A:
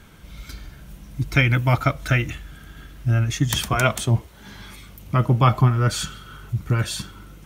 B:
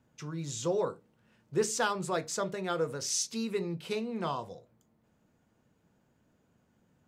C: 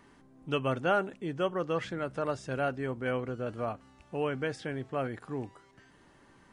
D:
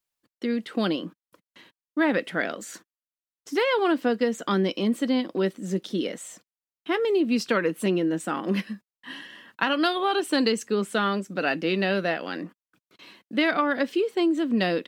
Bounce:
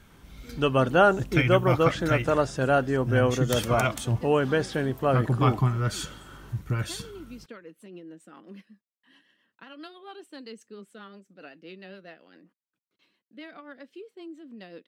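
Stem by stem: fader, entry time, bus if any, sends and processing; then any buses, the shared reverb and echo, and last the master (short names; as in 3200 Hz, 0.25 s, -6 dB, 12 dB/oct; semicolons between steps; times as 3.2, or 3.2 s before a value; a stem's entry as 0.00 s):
-7.0 dB, 0.00 s, no send, dry
-16.5 dB, 0.60 s, no send, negative-ratio compressor -42 dBFS
-0.5 dB, 0.10 s, no send, bell 2200 Hz -9 dB 0.31 oct; AGC gain up to 9.5 dB
-16.0 dB, 0.00 s, no send, rotary speaker horn 7.5 Hz; noise-modulated level, depth 60%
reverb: off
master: dry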